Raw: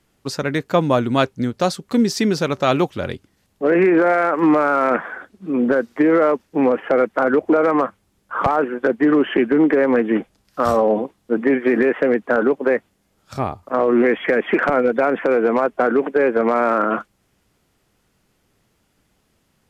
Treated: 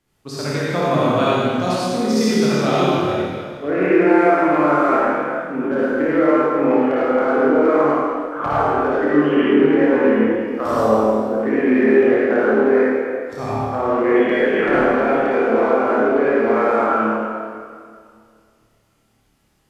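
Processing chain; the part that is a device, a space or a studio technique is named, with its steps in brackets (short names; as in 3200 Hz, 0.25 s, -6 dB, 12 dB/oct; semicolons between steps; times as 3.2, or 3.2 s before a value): tunnel (flutter echo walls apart 4.7 m, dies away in 0.32 s; reverb RT60 2.1 s, pre-delay 50 ms, DRR -8 dB); gain -8.5 dB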